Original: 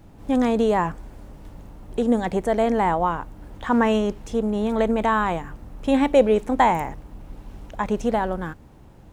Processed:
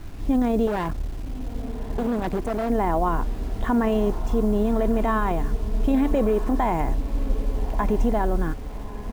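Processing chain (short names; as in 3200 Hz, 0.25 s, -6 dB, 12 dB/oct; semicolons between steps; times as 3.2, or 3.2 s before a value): tilt -2.5 dB/oct; comb 2.9 ms, depth 37%; limiter -13.5 dBFS, peak gain reduction 10 dB; 0.67–2.7 one-sided clip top -30.5 dBFS, bottom -16.5 dBFS; requantised 8-bit, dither none; diffused feedback echo 1.209 s, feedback 43%, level -14 dB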